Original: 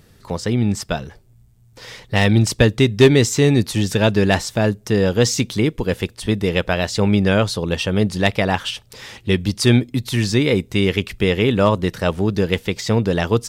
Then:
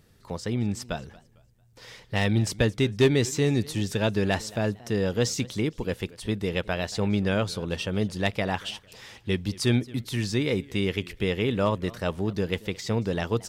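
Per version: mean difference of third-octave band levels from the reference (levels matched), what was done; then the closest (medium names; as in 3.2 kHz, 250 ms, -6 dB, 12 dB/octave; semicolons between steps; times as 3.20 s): 1.0 dB: modulated delay 226 ms, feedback 32%, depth 178 cents, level -21.5 dB; trim -9 dB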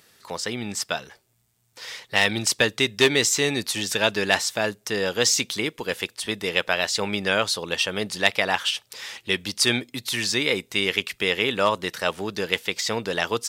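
7.0 dB: high-pass 1.3 kHz 6 dB/octave; trim +2 dB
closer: first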